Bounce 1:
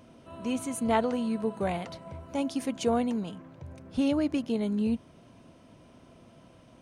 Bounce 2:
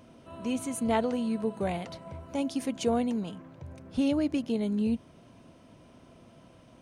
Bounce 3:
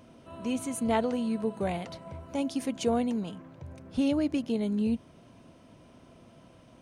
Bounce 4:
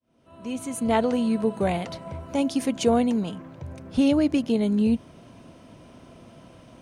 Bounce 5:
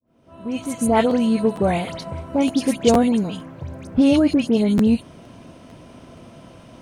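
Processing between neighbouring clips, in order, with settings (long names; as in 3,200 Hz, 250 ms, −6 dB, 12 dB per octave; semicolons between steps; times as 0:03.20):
dynamic equaliser 1,200 Hz, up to −4 dB, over −42 dBFS, Q 1.1
no processing that can be heard
fade in at the beginning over 1.17 s; level +6.5 dB
all-pass dispersion highs, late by 79 ms, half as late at 2,100 Hz; regular buffer underruns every 0.46 s, samples 512, repeat, from 0:00.63; level +5 dB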